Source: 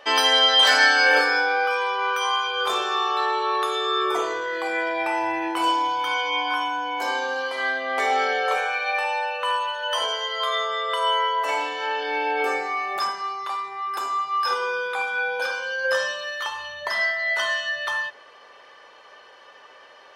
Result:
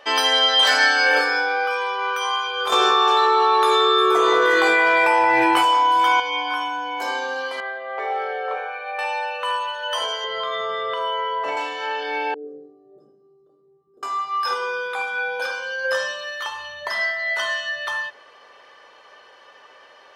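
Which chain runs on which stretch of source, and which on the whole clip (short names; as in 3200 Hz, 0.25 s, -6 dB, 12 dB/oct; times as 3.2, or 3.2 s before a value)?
2.72–6.2 doubler 16 ms -6 dB + echo with dull and thin repeats by turns 0.177 s, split 2200 Hz, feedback 55%, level -5 dB + fast leveller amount 100%
7.6–8.99 brick-wall FIR high-pass 290 Hz + tape spacing loss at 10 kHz 37 dB
10.24–11.57 LPF 4300 Hz + compressor 3:1, threshold -24 dBFS + low shelf 420 Hz +11.5 dB
12.34–14.03 inverse Chebyshev low-pass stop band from 850 Hz + resonator 150 Hz, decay 0.17 s, mix 70%
whole clip: dry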